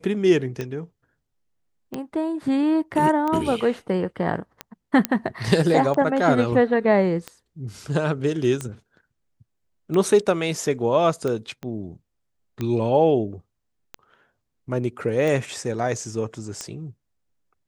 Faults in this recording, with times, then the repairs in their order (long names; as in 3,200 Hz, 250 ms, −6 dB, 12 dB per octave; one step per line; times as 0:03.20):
scratch tick 45 rpm −15 dBFS
0:05.05: click −4 dBFS
0:11.63: click −22 dBFS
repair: click removal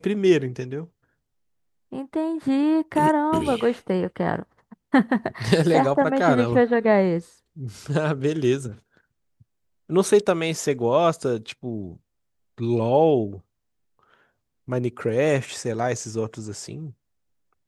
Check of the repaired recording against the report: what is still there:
0:11.63: click